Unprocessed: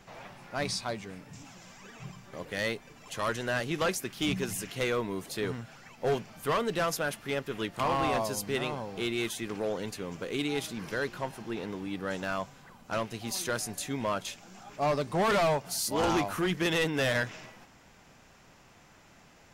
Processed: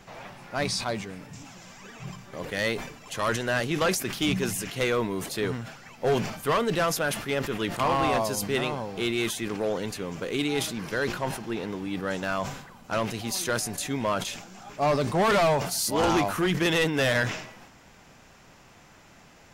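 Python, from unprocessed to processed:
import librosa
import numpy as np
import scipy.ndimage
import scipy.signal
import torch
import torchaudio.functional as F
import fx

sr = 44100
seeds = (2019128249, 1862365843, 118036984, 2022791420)

y = fx.sustainer(x, sr, db_per_s=78.0)
y = F.gain(torch.from_numpy(y), 4.0).numpy()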